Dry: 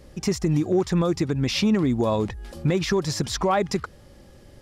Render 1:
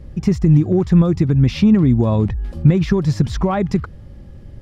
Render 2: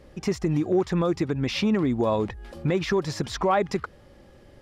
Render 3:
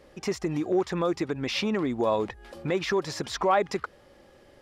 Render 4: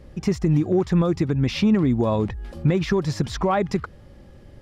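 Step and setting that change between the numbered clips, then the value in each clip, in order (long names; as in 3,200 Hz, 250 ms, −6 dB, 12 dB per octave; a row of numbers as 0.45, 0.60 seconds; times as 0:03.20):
bass and treble, bass: +14, −4, −14, +4 decibels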